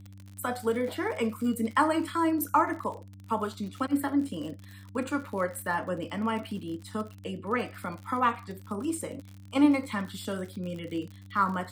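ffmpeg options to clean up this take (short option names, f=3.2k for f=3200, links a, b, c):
-af "adeclick=t=4,bandreject=f=97.5:t=h:w=4,bandreject=f=195:t=h:w=4,bandreject=f=292.5:t=h:w=4"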